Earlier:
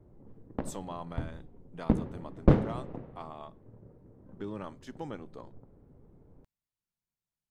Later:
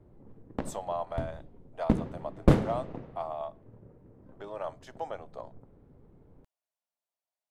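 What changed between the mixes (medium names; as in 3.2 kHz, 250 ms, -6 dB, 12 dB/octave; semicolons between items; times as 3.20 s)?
speech: add resonant high-pass 640 Hz, resonance Q 4.4; background: remove tape spacing loss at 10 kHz 21 dB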